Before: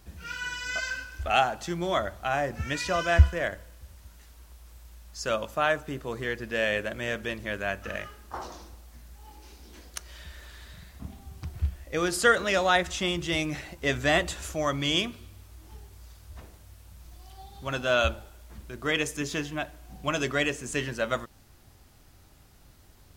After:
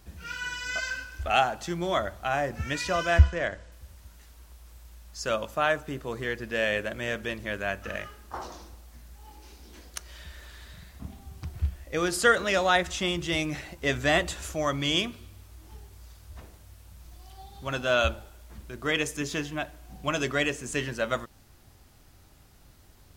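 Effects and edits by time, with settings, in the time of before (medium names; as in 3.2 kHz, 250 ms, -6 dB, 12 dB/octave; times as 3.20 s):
3.19–3.72 s: low-pass 7.7 kHz 24 dB/octave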